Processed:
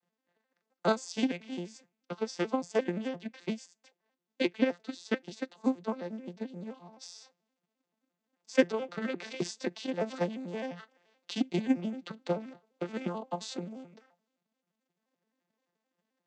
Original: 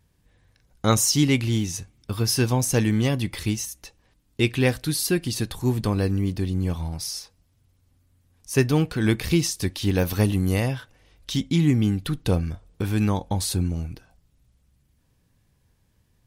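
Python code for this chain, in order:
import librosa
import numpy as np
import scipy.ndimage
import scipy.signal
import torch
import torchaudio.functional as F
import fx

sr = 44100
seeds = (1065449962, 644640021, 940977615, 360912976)

y = fx.vocoder_arp(x, sr, chord='major triad', root=53, every_ms=87)
y = fx.transient(y, sr, attack_db=11, sustain_db=fx.steps((0.0, -2.0), (7.01, 6.0)))
y = scipy.signal.sosfilt(scipy.signal.butter(2, 490.0, 'highpass', fs=sr, output='sos'), y)
y = y * librosa.db_to_amplitude(-4.5)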